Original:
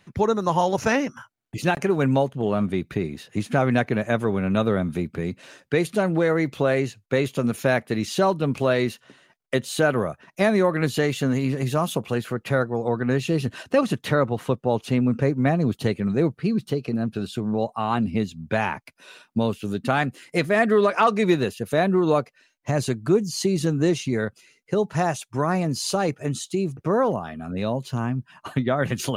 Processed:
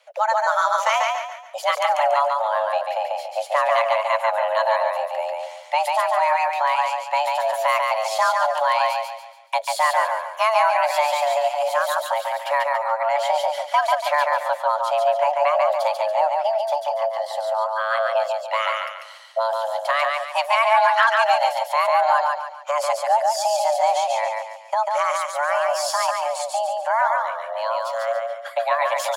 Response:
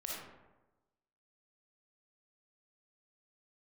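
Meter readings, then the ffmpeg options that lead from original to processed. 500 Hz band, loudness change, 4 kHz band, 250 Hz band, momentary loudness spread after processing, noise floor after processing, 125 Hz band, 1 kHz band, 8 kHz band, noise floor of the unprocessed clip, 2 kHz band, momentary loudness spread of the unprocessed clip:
+1.5 dB, +2.5 dB, +4.5 dB, below −40 dB, 8 LU, −39 dBFS, below −40 dB, +10.0 dB, +2.0 dB, −65 dBFS, +4.5 dB, 7 LU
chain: -af "afreqshift=440,aecho=1:1:142|284|426|568|710:0.708|0.262|0.0969|0.0359|0.0133"

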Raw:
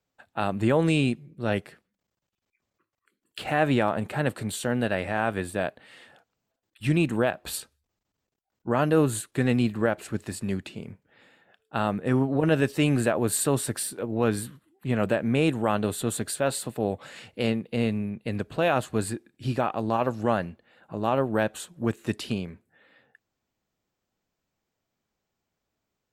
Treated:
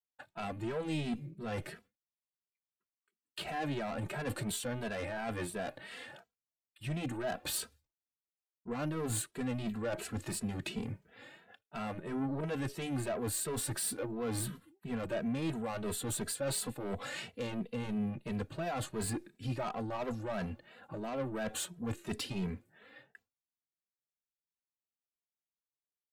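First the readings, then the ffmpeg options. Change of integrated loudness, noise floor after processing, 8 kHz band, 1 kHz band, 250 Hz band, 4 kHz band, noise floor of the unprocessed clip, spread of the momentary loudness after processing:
−11.0 dB, below −85 dBFS, −5.0 dB, −12.0 dB, −11.0 dB, −6.5 dB, −83 dBFS, 12 LU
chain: -filter_complex "[0:a]agate=range=-33dB:threshold=-57dB:ratio=3:detection=peak,areverse,acompressor=threshold=-31dB:ratio=10,areverse,asoftclip=type=tanh:threshold=-34.5dB,asplit=2[link_01][link_02];[link_02]adelay=2.7,afreqshift=2.9[link_03];[link_01][link_03]amix=inputs=2:normalize=1,volume=6.5dB"

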